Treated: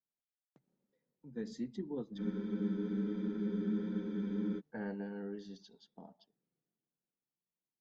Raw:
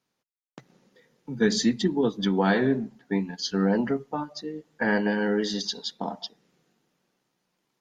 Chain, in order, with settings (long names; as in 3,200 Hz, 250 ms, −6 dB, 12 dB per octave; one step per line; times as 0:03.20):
source passing by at 0:03.41, 11 m/s, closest 3.2 metres
tilt shelving filter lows +6.5 dB, about 890 Hz
frozen spectrum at 0:02.21, 2.38 s
level −6.5 dB